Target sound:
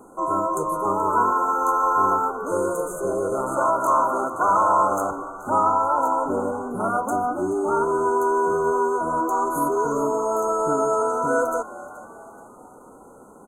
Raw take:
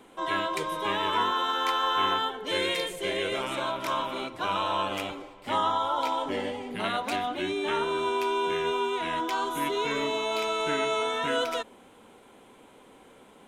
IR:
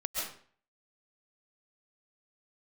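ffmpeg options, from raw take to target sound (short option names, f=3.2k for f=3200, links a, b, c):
-filter_complex "[0:a]asettb=1/sr,asplit=3[a][b][c];[a]atrim=end=3.564[d];[b]atrim=start=3.56:end=5.11,asetpts=PTS-STARTPTS,afade=t=in:d=0.004:c=qsin,afade=t=out:st=1.546:d=0.004:c=qsin,asplit=2[e][f];[f]highpass=f=720:p=1,volume=12dB,asoftclip=type=tanh:threshold=-15.5dB[g];[e][g]amix=inputs=2:normalize=0,lowpass=f=7.7k:p=1,volume=-6dB[h];[c]atrim=start=5.106[i];[d][h]acrossfade=d=0.004:c1=hsin:c2=qsin[j];[j][i]acrossfade=d=0.004:c1=qsin:c2=hsin,asplit=5[k][l][m][n][o];[l]adelay=428,afreqshift=83,volume=-17.5dB[p];[m]adelay=856,afreqshift=166,volume=-23.5dB[q];[n]adelay=1284,afreqshift=249,volume=-29.5dB[r];[o]adelay=1712,afreqshift=332,volume=-35.6dB[s];[k][p][q][r][s]amix=inputs=5:normalize=0,afftfilt=real='re*(1-between(b*sr/4096,1500,6200))':imag='im*(1-between(b*sr/4096,1500,6200))':win_size=4096:overlap=0.75,volume=7dB"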